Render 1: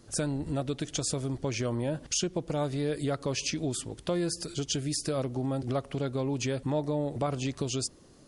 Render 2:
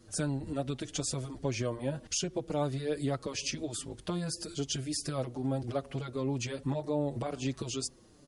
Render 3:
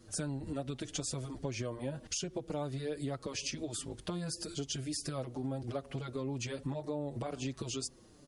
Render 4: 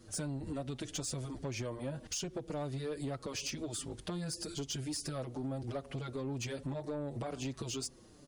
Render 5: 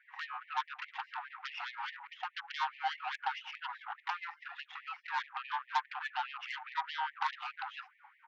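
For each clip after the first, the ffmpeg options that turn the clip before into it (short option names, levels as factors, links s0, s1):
-filter_complex "[0:a]asplit=2[s0][s1];[s1]adelay=5.8,afreqshift=-2.5[s2];[s0][s2]amix=inputs=2:normalize=1"
-af "acompressor=threshold=0.0178:ratio=3"
-af "asoftclip=type=tanh:threshold=0.0251,volume=1.12"
-af "highpass=f=180:t=q:w=0.5412,highpass=f=180:t=q:w=1.307,lowpass=f=2100:t=q:w=0.5176,lowpass=f=2100:t=q:w=0.7071,lowpass=f=2100:t=q:w=1.932,afreqshift=350,aeval=exprs='0.0422*(cos(1*acos(clip(val(0)/0.0422,-1,1)))-cos(1*PI/2))+0.00473*(cos(4*acos(clip(val(0)/0.0422,-1,1)))-cos(4*PI/2))+0.00841*(cos(6*acos(clip(val(0)/0.0422,-1,1)))-cos(6*PI/2))':c=same,afftfilt=real='re*gte(b*sr/1024,730*pow(1800/730,0.5+0.5*sin(2*PI*4.8*pts/sr)))':imag='im*gte(b*sr/1024,730*pow(1800/730,0.5+0.5*sin(2*PI*4.8*pts/sr)))':win_size=1024:overlap=0.75,volume=2.82"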